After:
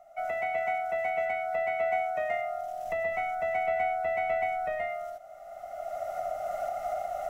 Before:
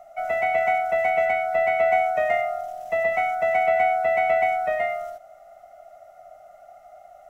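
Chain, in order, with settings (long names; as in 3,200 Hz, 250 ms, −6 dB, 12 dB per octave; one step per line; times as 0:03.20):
camcorder AGC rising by 18 dB per second
0:02.86–0:04.88: low-shelf EQ 83 Hz +11.5 dB
level −8.5 dB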